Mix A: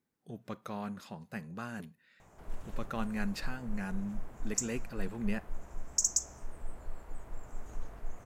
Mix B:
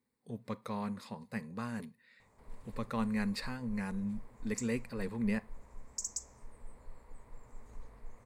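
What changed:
background −8.0 dB
master: add EQ curve with evenly spaced ripples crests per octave 0.95, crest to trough 8 dB

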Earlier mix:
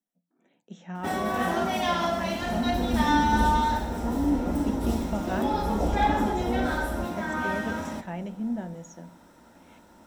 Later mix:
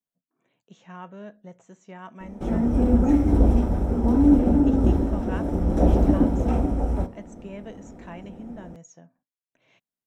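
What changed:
speech: send off
first sound: muted
second sound: remove transistor ladder low-pass 1,100 Hz, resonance 50%

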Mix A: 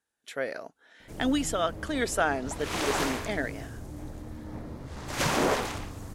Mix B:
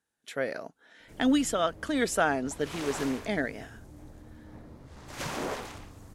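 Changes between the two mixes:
speech: add parametric band 160 Hz +5.5 dB 1.7 octaves
background −8.5 dB

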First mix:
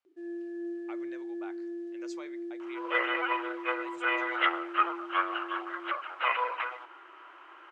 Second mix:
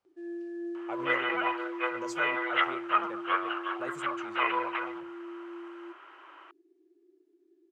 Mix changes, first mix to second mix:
speech: remove resonant band-pass 2,700 Hz, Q 0.86
second sound: entry −1.85 s

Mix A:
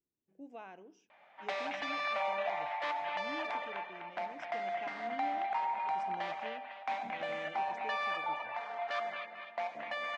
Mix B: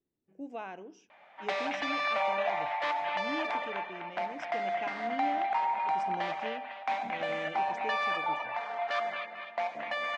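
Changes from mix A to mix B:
speech +8.0 dB
background +4.5 dB

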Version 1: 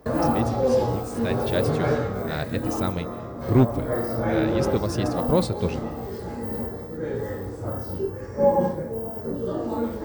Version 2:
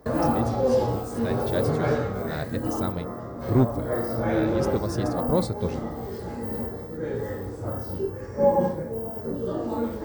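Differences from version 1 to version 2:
speech: add parametric band 2,700 Hz −9 dB 0.65 octaves
reverb: off

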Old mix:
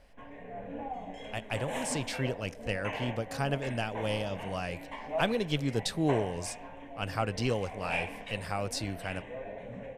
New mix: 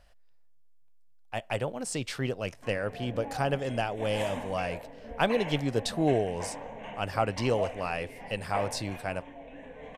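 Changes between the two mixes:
speech: add parametric band 680 Hz +5.5 dB 1.8 octaves
background: entry +2.45 s

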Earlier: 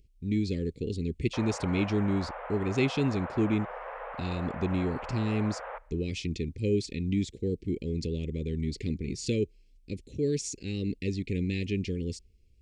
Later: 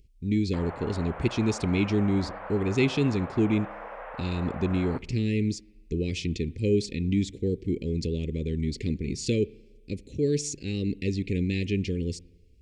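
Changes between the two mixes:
speech: send on
background: entry −0.80 s

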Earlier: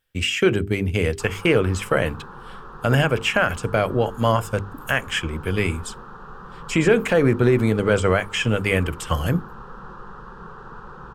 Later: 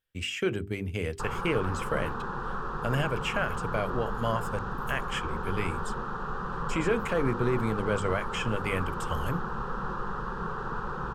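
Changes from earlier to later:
speech −10.5 dB
background +5.5 dB

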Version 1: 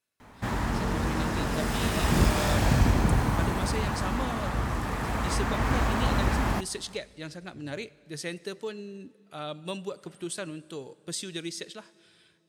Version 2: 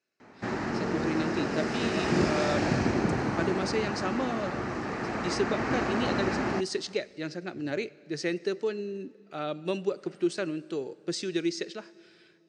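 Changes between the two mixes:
speech +4.0 dB
master: add loudspeaker in its box 170–6,000 Hz, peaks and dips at 360 Hz +7 dB, 1,000 Hz −6 dB, 3,400 Hz −9 dB

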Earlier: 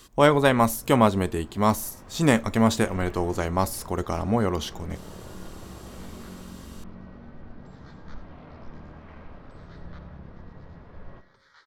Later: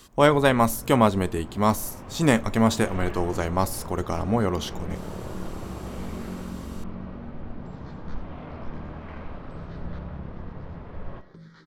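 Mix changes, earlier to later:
first sound +7.0 dB
second sound: remove high-pass filter 610 Hz 24 dB per octave

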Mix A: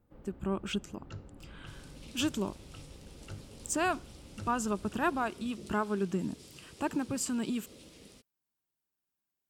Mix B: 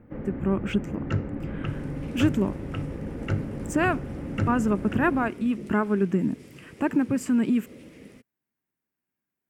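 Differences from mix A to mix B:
first sound +11.5 dB
master: add octave-band graphic EQ 125/250/500/2,000/4,000/8,000 Hz +7/+9/+5/+12/−9/−4 dB

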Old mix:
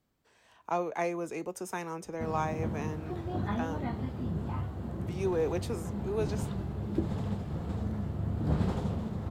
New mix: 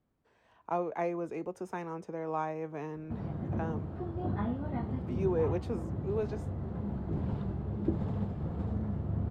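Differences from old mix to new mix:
background: entry +0.90 s
master: add low-pass filter 1,200 Hz 6 dB per octave

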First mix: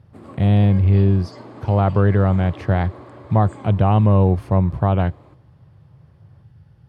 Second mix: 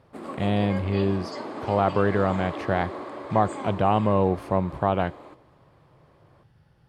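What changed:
background +7.0 dB
master: add parametric band 94 Hz −14 dB 2 octaves

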